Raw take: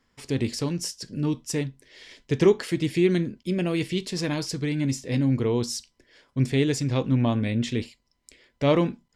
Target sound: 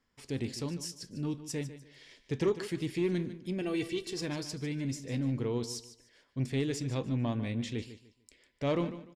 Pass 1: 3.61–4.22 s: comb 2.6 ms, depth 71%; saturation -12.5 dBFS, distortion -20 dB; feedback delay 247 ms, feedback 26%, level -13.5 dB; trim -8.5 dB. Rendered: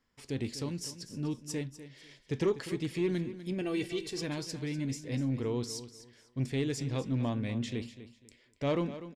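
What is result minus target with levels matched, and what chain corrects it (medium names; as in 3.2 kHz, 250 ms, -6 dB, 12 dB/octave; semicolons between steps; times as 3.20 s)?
echo 98 ms late
3.61–4.22 s: comb 2.6 ms, depth 71%; saturation -12.5 dBFS, distortion -20 dB; feedback delay 149 ms, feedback 26%, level -13.5 dB; trim -8.5 dB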